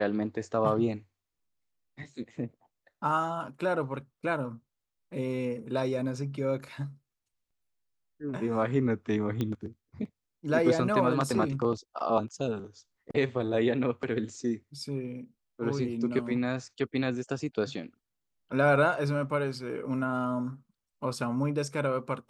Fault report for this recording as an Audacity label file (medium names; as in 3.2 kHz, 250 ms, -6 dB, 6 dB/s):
9.410000	9.410000	pop -18 dBFS